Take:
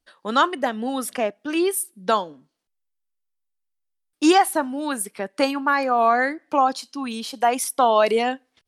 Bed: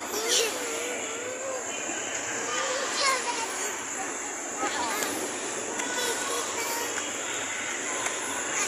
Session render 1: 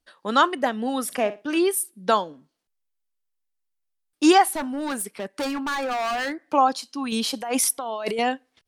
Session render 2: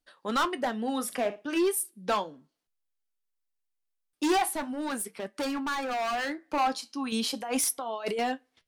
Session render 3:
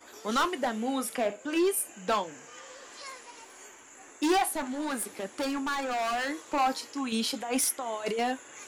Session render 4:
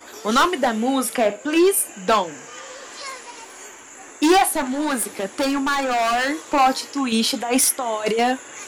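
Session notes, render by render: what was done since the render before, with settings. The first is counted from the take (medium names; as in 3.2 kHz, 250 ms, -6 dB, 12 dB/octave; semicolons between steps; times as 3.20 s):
1.04–1.59 s: flutter echo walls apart 10.2 m, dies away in 0.25 s; 4.52–6.39 s: hard clipper -24 dBFS; 7.12–8.19 s: compressor with a negative ratio -26 dBFS
overload inside the chain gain 17.5 dB; flange 0.37 Hz, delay 6.6 ms, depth 5.4 ms, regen -67%
add bed -18.5 dB
trim +10 dB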